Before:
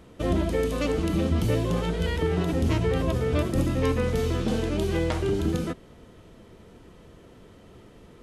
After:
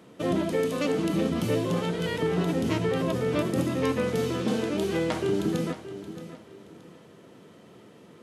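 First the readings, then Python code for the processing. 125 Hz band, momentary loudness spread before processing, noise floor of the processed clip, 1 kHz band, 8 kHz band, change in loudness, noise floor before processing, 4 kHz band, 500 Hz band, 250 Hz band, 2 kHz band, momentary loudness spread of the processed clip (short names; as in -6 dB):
-5.0 dB, 3 LU, -52 dBFS, 0.0 dB, 0.0 dB, -1.5 dB, -51 dBFS, 0.0 dB, 0.0 dB, 0.0 dB, 0.0 dB, 10 LU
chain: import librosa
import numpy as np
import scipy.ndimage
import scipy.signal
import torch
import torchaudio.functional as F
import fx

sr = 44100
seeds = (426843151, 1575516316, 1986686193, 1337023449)

y = scipy.signal.sosfilt(scipy.signal.butter(4, 130.0, 'highpass', fs=sr, output='sos'), x)
y = fx.echo_feedback(y, sr, ms=624, feedback_pct=28, wet_db=-13)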